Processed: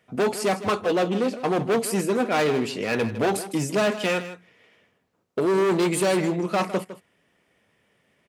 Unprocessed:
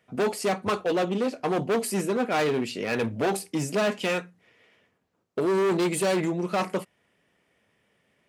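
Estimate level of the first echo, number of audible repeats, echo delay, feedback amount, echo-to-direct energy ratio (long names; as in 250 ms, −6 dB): −13.5 dB, 1, 157 ms, repeats not evenly spaced, −13.5 dB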